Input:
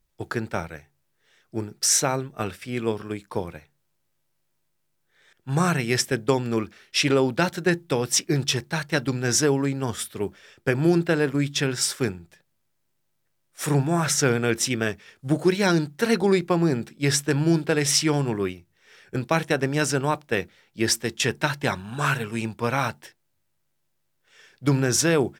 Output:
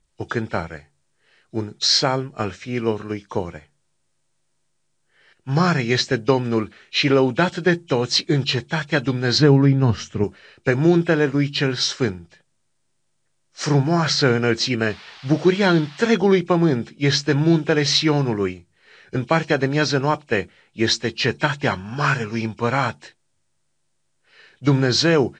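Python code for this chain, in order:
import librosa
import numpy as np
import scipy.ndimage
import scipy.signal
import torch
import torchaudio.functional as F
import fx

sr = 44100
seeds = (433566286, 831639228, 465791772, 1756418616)

y = fx.freq_compress(x, sr, knee_hz=2200.0, ratio=1.5)
y = fx.bass_treble(y, sr, bass_db=10, treble_db=-8, at=(9.38, 10.24))
y = fx.dmg_noise_band(y, sr, seeds[0], low_hz=730.0, high_hz=4600.0, level_db=-48.0, at=(14.89, 16.05), fade=0.02)
y = y * 10.0 ** (4.0 / 20.0)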